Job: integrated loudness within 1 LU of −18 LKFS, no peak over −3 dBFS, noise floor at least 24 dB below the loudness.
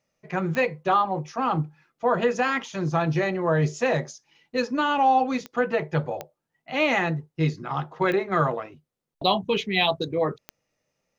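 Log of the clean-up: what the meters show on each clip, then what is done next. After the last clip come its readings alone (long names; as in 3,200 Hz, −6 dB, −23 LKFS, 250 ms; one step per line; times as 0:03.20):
number of clicks 5; integrated loudness −25.0 LKFS; sample peak −7.0 dBFS; target loudness −18.0 LKFS
→ click removal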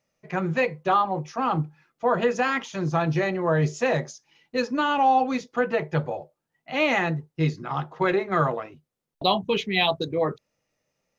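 number of clicks 0; integrated loudness −25.0 LKFS; sample peak −7.0 dBFS; target loudness −18.0 LKFS
→ level +7 dB
brickwall limiter −3 dBFS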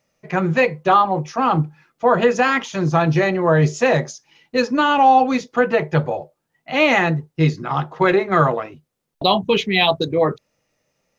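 integrated loudness −18.0 LKFS; sample peak −3.0 dBFS; background noise floor −75 dBFS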